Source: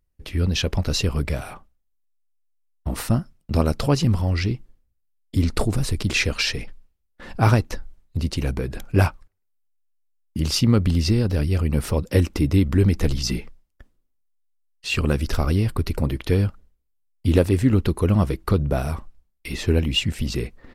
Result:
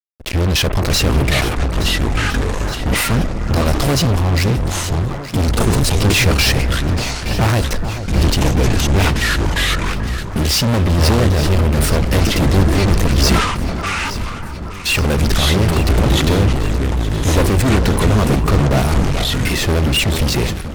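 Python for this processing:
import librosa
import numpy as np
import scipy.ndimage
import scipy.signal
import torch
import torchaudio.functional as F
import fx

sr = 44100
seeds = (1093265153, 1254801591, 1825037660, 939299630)

y = fx.leveller(x, sr, passes=1)
y = fx.fuzz(y, sr, gain_db=26.0, gate_db=-34.0)
y = fx.echo_pitch(y, sr, ms=531, semitones=-6, count=2, db_per_echo=-3.0)
y = fx.echo_alternate(y, sr, ms=436, hz=1600.0, feedback_pct=73, wet_db=-10.5)
y = fx.sustainer(y, sr, db_per_s=55.0)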